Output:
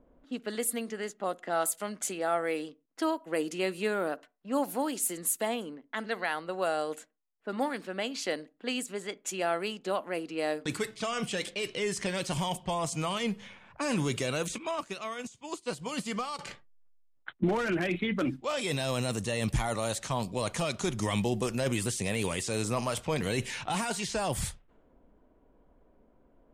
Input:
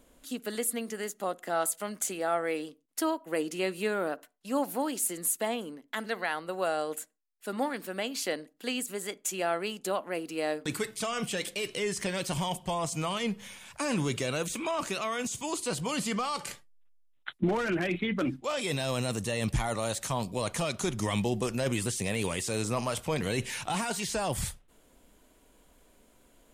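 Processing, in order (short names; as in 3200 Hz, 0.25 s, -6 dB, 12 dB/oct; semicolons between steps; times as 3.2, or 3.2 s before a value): low-pass opened by the level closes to 890 Hz, open at -27.5 dBFS; 14.58–16.39 upward expander 2.5:1, over -41 dBFS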